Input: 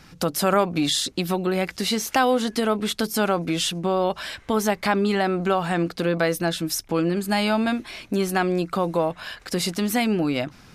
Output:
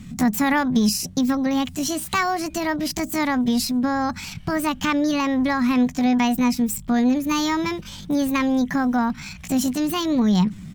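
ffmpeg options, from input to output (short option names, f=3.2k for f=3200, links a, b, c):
-af "lowshelf=f=190:t=q:w=3:g=13,asetrate=64194,aresample=44100,atempo=0.686977,volume=-1dB"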